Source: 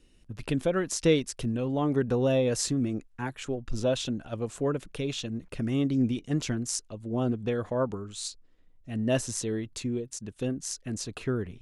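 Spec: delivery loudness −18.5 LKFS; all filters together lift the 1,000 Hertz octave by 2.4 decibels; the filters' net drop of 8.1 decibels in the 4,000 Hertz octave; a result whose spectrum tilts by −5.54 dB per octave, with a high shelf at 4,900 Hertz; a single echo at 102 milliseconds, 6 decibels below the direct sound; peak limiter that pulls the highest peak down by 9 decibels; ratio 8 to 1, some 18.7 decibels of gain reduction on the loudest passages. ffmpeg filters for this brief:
ffmpeg -i in.wav -af "equalizer=frequency=1000:width_type=o:gain=4,equalizer=frequency=4000:width_type=o:gain=-8,highshelf=frequency=4900:gain=-6,acompressor=threshold=-37dB:ratio=8,alimiter=level_in=9dB:limit=-24dB:level=0:latency=1,volume=-9dB,aecho=1:1:102:0.501,volume=24dB" out.wav

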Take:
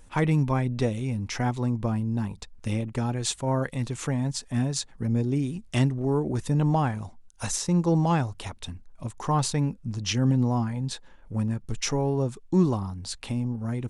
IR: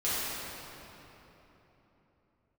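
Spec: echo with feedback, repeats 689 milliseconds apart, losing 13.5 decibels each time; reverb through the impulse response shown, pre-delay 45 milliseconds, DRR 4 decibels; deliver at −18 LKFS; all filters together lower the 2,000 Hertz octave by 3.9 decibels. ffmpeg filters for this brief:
-filter_complex "[0:a]equalizer=frequency=2000:width_type=o:gain=-5,aecho=1:1:689|1378:0.211|0.0444,asplit=2[link_01][link_02];[1:a]atrim=start_sample=2205,adelay=45[link_03];[link_02][link_03]afir=irnorm=-1:irlink=0,volume=-14dB[link_04];[link_01][link_04]amix=inputs=2:normalize=0,volume=7.5dB"

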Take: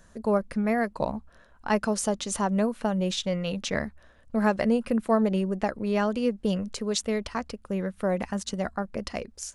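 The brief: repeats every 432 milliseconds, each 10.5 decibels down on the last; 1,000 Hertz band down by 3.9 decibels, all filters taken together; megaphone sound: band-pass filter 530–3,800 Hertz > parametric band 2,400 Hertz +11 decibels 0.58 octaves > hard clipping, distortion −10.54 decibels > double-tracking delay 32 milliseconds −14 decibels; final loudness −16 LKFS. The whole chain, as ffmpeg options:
ffmpeg -i in.wav -filter_complex "[0:a]highpass=530,lowpass=3800,equalizer=frequency=1000:width_type=o:gain=-5,equalizer=frequency=2400:width_type=o:width=0.58:gain=11,aecho=1:1:432|864|1296:0.299|0.0896|0.0269,asoftclip=type=hard:threshold=-25dB,asplit=2[link_01][link_02];[link_02]adelay=32,volume=-14dB[link_03];[link_01][link_03]amix=inputs=2:normalize=0,volume=18dB" out.wav

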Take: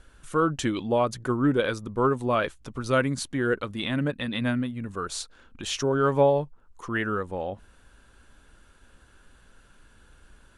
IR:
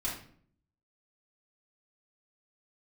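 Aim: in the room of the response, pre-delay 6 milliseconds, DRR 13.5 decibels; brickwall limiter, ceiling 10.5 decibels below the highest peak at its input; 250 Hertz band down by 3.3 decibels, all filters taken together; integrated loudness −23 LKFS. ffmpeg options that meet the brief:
-filter_complex "[0:a]equalizer=frequency=250:width_type=o:gain=-4,alimiter=limit=-20.5dB:level=0:latency=1,asplit=2[link_01][link_02];[1:a]atrim=start_sample=2205,adelay=6[link_03];[link_02][link_03]afir=irnorm=-1:irlink=0,volume=-17dB[link_04];[link_01][link_04]amix=inputs=2:normalize=0,volume=8dB"

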